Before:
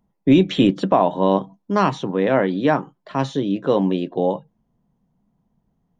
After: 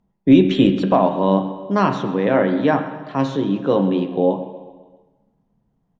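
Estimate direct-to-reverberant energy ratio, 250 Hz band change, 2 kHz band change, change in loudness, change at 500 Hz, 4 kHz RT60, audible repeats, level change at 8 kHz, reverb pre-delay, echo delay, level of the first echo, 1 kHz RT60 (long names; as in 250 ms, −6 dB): 6.5 dB, +2.5 dB, +0.5 dB, +1.5 dB, +1.0 dB, 1.3 s, 4, can't be measured, 6 ms, 132 ms, −17.0 dB, 1.3 s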